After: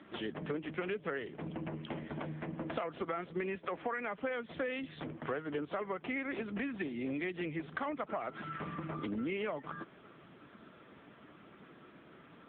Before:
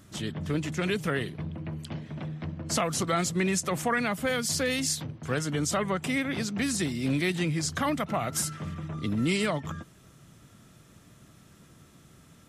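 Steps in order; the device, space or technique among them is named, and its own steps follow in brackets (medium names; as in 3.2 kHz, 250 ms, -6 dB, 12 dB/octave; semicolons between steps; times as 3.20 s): 3.55–4.21 s: high-pass 160 Hz 12 dB/octave; dynamic bell 430 Hz, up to +3 dB, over -39 dBFS, Q 2.3; voicemail (band-pass 310–2700 Hz; compression 6:1, threshold -42 dBFS, peak gain reduction 18 dB; trim +7.5 dB; AMR-NB 6.7 kbps 8 kHz)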